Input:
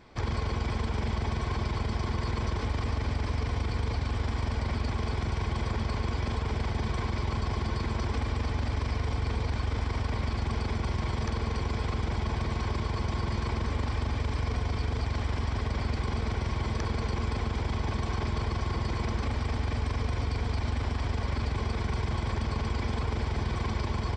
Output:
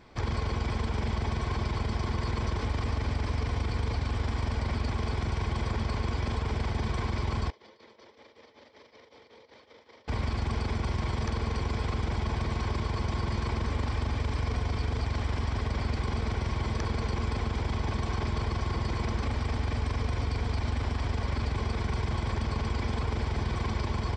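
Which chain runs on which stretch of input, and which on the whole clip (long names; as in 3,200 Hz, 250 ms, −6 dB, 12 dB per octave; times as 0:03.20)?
0:07.50–0:10.08: amplitude tremolo 5.3 Hz, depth 91% + loudspeaker in its box 480–5,400 Hz, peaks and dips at 520 Hz +7 dB, 740 Hz −8 dB, 1,100 Hz −7 dB, 1,500 Hz −8 dB, 2,600 Hz −6 dB, 4,600 Hz −3 dB + downward compressor 12 to 1, threshold −50 dBFS
whole clip: no processing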